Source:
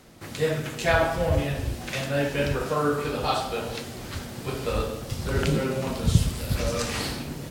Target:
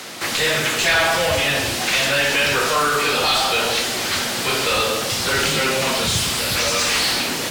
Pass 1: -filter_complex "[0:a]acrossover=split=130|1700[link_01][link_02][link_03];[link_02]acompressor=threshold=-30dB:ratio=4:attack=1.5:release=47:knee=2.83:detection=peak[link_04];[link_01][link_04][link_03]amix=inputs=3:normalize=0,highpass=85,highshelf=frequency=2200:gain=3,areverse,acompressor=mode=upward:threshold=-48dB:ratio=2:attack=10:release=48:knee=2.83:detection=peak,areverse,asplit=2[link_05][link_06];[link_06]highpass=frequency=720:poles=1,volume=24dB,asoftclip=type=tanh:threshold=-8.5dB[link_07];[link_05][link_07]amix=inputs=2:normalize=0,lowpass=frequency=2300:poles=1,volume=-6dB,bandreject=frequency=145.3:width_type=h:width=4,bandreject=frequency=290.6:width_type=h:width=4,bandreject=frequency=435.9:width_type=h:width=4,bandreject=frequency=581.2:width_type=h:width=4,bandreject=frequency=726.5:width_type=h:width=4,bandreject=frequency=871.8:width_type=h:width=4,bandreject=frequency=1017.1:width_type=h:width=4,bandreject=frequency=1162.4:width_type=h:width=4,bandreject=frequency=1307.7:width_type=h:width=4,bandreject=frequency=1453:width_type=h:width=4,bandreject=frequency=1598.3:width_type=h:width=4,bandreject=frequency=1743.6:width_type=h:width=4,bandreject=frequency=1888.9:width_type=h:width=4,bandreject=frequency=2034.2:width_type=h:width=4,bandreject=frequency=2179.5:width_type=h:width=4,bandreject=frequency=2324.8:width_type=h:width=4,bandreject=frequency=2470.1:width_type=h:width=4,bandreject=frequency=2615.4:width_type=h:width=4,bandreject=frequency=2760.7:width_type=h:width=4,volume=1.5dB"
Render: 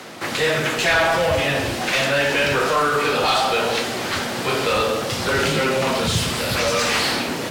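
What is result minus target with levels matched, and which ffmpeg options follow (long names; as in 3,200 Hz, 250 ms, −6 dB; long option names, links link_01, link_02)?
4,000 Hz band −2.5 dB
-filter_complex "[0:a]acrossover=split=130|1700[link_01][link_02][link_03];[link_02]acompressor=threshold=-30dB:ratio=4:attack=1.5:release=47:knee=2.83:detection=peak[link_04];[link_01][link_04][link_03]amix=inputs=3:normalize=0,highpass=85,highshelf=frequency=2200:gain=14.5,areverse,acompressor=mode=upward:threshold=-48dB:ratio=2:attack=10:release=48:knee=2.83:detection=peak,areverse,asplit=2[link_05][link_06];[link_06]highpass=frequency=720:poles=1,volume=24dB,asoftclip=type=tanh:threshold=-8.5dB[link_07];[link_05][link_07]amix=inputs=2:normalize=0,lowpass=frequency=2300:poles=1,volume=-6dB,bandreject=frequency=145.3:width_type=h:width=4,bandreject=frequency=290.6:width_type=h:width=4,bandreject=frequency=435.9:width_type=h:width=4,bandreject=frequency=581.2:width_type=h:width=4,bandreject=frequency=726.5:width_type=h:width=4,bandreject=frequency=871.8:width_type=h:width=4,bandreject=frequency=1017.1:width_type=h:width=4,bandreject=frequency=1162.4:width_type=h:width=4,bandreject=frequency=1307.7:width_type=h:width=4,bandreject=frequency=1453:width_type=h:width=4,bandreject=frequency=1598.3:width_type=h:width=4,bandreject=frequency=1743.6:width_type=h:width=4,bandreject=frequency=1888.9:width_type=h:width=4,bandreject=frequency=2034.2:width_type=h:width=4,bandreject=frequency=2179.5:width_type=h:width=4,bandreject=frequency=2324.8:width_type=h:width=4,bandreject=frequency=2470.1:width_type=h:width=4,bandreject=frequency=2615.4:width_type=h:width=4,bandreject=frequency=2760.7:width_type=h:width=4,volume=1.5dB"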